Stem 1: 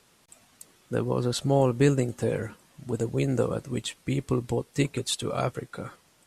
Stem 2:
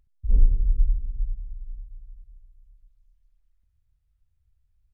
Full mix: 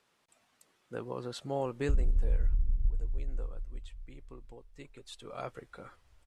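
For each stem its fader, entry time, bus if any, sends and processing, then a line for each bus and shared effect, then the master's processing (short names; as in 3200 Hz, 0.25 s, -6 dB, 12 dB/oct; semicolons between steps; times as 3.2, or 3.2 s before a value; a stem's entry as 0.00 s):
2.3 s -7 dB -> 2.86 s -19.5 dB -> 4.79 s -19.5 dB -> 5.53 s -7 dB, 0.00 s, no send, no echo send, low shelf 330 Hz -11 dB
+3.0 dB, 1.65 s, no send, echo send -10 dB, limiter -17 dBFS, peak gain reduction 9.5 dB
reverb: off
echo: echo 92 ms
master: high shelf 5100 Hz -12 dB; compressor 10:1, threshold -22 dBFS, peak gain reduction 8.5 dB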